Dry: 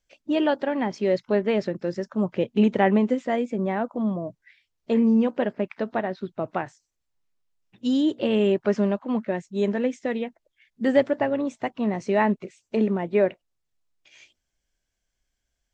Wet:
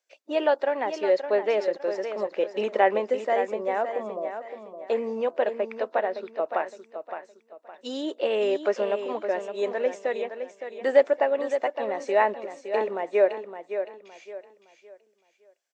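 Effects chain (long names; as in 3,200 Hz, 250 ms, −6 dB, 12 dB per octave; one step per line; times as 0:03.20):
four-pole ladder high-pass 400 Hz, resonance 30%
notch filter 3,200 Hz, Q 18
repeating echo 564 ms, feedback 32%, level −9 dB
level +6 dB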